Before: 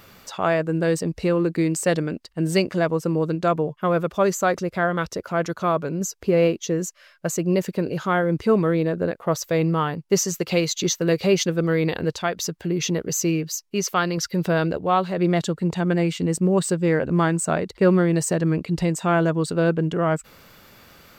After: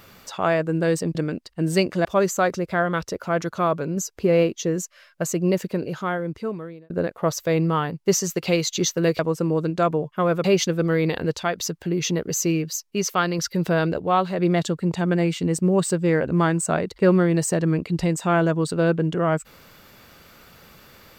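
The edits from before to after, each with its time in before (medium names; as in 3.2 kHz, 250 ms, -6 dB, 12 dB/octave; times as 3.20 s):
1.15–1.94 s: delete
2.84–4.09 s: move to 11.23 s
7.59–8.94 s: fade out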